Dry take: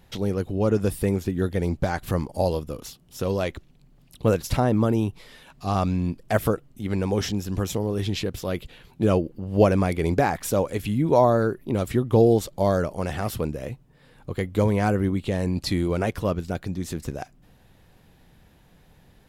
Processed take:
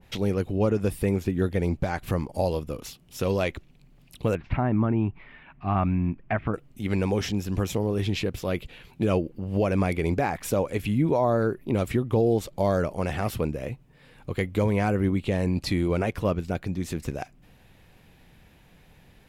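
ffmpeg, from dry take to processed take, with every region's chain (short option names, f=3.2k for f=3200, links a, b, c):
-filter_complex "[0:a]asettb=1/sr,asplit=3[a][b][c];[a]atrim=end=4.354[d];[b]atrim=start=4.35:end=6.54,asetpts=PTS-STARTPTS,afade=t=in:d=0.004:c=qsin,afade=t=out:st=2.186:d=0.004:c=qsin,lowpass=f=2.3k:w=0.5412,lowpass=f=2.3k:w=1.3066,equalizer=f=490:t=o:w=0.4:g=-12.5[e];[c]atrim=start=6.536[f];[d][e]acrossfade=d=0.004:c1=hsin:c2=qsin[g];[g][f]acrossfade=d=0.004:c1=qsin:c2=hsin,equalizer=f=2.4k:t=o:w=0.64:g=6.5,alimiter=limit=-13.5dB:level=0:latency=1:release=221,adynamicequalizer=threshold=0.00708:dfrequency=1600:dqfactor=0.7:tfrequency=1600:tqfactor=0.7:attack=5:release=100:ratio=0.375:range=2:mode=cutabove:tftype=highshelf"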